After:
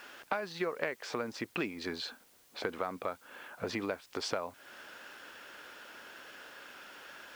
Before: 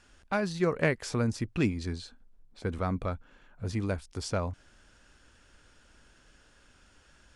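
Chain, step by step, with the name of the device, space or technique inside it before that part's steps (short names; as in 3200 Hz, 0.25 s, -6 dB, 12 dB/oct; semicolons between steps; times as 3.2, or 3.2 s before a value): baby monitor (BPF 440–3700 Hz; compressor 6:1, threshold -47 dBFS, peak gain reduction 22 dB; white noise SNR 24 dB); gain +14 dB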